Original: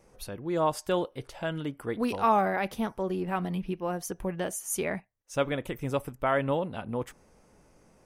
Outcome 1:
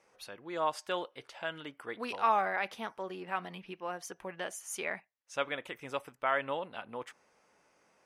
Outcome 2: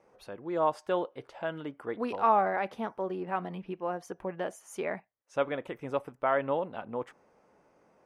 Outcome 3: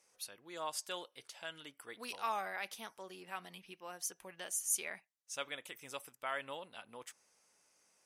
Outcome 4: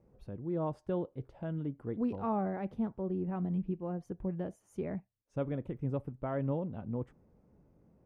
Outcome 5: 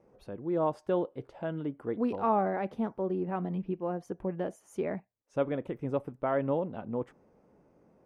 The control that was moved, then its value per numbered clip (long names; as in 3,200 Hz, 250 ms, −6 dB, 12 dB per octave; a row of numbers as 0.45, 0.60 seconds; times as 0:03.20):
resonant band-pass, frequency: 2,200, 840, 7,000, 120, 330 Hertz